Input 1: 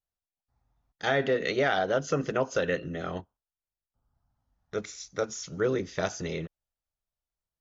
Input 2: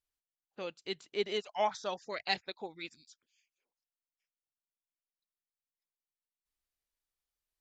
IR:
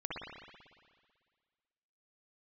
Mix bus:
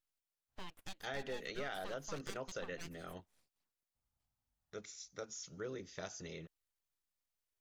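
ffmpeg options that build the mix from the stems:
-filter_complex "[0:a]highshelf=f=3.7k:g=8.5,volume=-14.5dB[a];[1:a]bandreject=f=850:w=12,acompressor=threshold=-41dB:ratio=6,aeval=exprs='abs(val(0))':c=same,volume=0.5dB[b];[a][b]amix=inputs=2:normalize=0,acompressor=threshold=-44dB:ratio=1.5"

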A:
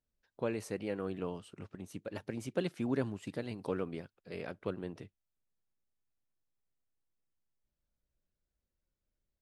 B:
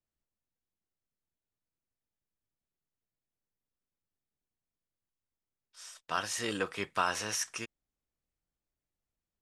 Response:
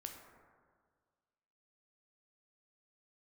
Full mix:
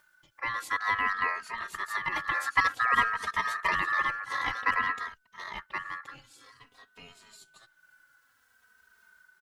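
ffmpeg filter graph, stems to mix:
-filter_complex "[0:a]dynaudnorm=f=400:g=3:m=12dB,volume=2.5dB,asplit=2[a][b];[b]volume=-5.5dB[c];[1:a]aecho=1:1:7.4:0.65,volume=-17.5dB,asplit=2[d][e];[e]volume=-16.5dB[f];[2:a]atrim=start_sample=2205[g];[f][g]afir=irnorm=-1:irlink=0[h];[c]aecho=0:1:1075:1[i];[a][d][h][i]amix=inputs=4:normalize=0,acompressor=mode=upward:threshold=-43dB:ratio=2.5,aeval=exprs='val(0)*sin(2*PI*1500*n/s)':c=same,asplit=2[j][k];[k]adelay=2.9,afreqshift=-0.53[l];[j][l]amix=inputs=2:normalize=1"

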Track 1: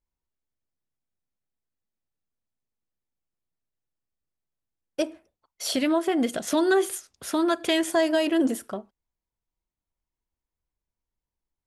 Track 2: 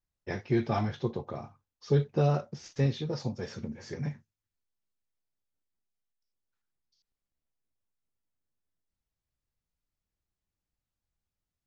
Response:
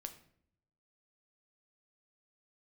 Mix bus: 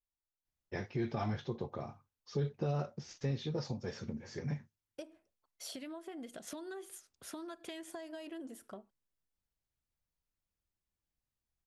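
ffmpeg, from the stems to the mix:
-filter_complex "[0:a]acompressor=threshold=-29dB:ratio=16,volume=-13dB[a];[1:a]adelay=450,volume=-3.5dB[b];[a][b]amix=inputs=2:normalize=0,alimiter=level_in=2dB:limit=-24dB:level=0:latency=1:release=109,volume=-2dB"

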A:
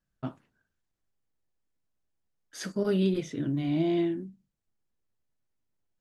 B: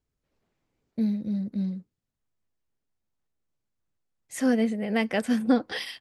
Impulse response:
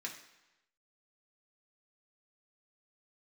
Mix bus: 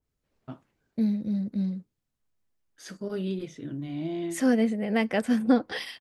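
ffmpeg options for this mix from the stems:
-filter_complex "[0:a]adelay=250,volume=-5.5dB[a];[1:a]adynamicequalizer=threshold=0.00891:dfrequency=2000:dqfactor=0.7:tfrequency=2000:tqfactor=0.7:attack=5:release=100:ratio=0.375:range=2:mode=cutabove:tftype=highshelf,volume=0.5dB,asplit=2[b][c];[c]apad=whole_len=275736[d];[a][d]sidechaincompress=threshold=-42dB:ratio=8:attack=16:release=182[e];[e][b]amix=inputs=2:normalize=0"

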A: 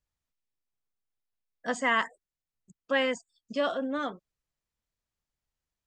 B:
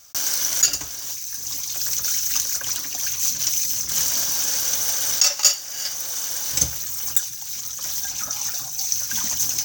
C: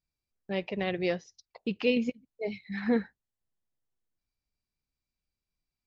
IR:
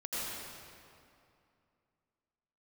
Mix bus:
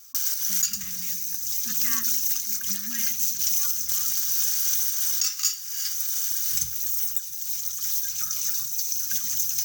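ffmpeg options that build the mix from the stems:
-filter_complex "[0:a]volume=-10.5dB[a];[1:a]highshelf=f=8.1k:g=11.5,volume=-6.5dB[b];[2:a]acompressor=threshold=-36dB:ratio=4,volume=-4.5dB,asplit=2[c][d];[d]volume=-12.5dB[e];[3:a]atrim=start_sample=2205[f];[e][f]afir=irnorm=-1:irlink=0[g];[a][b][c][g]amix=inputs=4:normalize=0,afftfilt=real='re*(1-between(b*sr/4096,250,1100))':imag='im*(1-between(b*sr/4096,250,1100))':win_size=4096:overlap=0.75,alimiter=limit=-11dB:level=0:latency=1:release=251"

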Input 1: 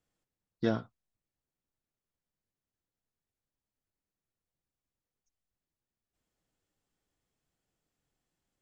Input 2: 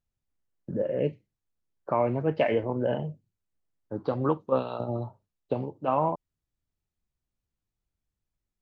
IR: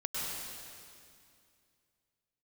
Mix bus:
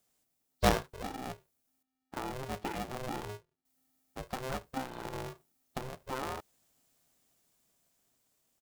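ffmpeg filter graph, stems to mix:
-filter_complex "[0:a]equalizer=f=410:w=2.9:g=10.5,crystalizer=i=4:c=0,volume=-1dB,asplit=3[a][b][c];[a]atrim=end=1.83,asetpts=PTS-STARTPTS,afade=t=out:st=1.826:d=0.004:c=hsin[d];[b]atrim=start=1.83:end=3.65,asetpts=PTS-STARTPTS,volume=0[e];[c]atrim=start=3.65,asetpts=PTS-STARTPTS,afade=t=in:d=0.004:c=hsin[f];[d][e][f]concat=n=3:v=0:a=1,asplit=2[g][h];[h]volume=-20.5dB[i];[1:a]acompressor=threshold=-26dB:ratio=3,adelay=250,volume=-12dB[j];[i]aecho=0:1:389:1[k];[g][j][k]amix=inputs=3:normalize=0,dynaudnorm=f=580:g=7:m=4dB,aeval=exprs='val(0)*sgn(sin(2*PI*260*n/s))':c=same"

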